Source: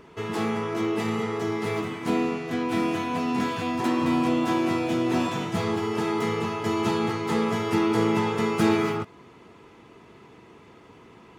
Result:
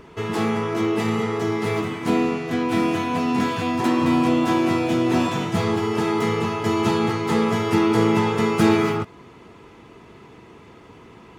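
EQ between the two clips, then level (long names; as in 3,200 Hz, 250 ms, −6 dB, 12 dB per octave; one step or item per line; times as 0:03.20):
low-shelf EQ 69 Hz +8 dB
+4.0 dB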